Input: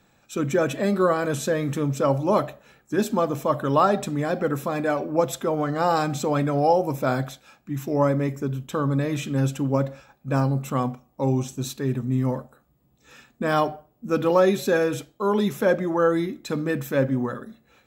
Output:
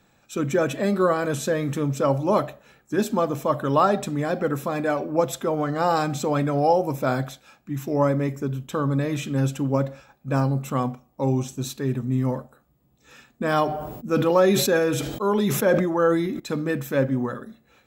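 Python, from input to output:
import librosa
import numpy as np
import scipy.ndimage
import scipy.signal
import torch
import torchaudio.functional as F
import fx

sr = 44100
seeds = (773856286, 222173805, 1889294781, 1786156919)

y = fx.sustainer(x, sr, db_per_s=43.0, at=(13.64, 16.4))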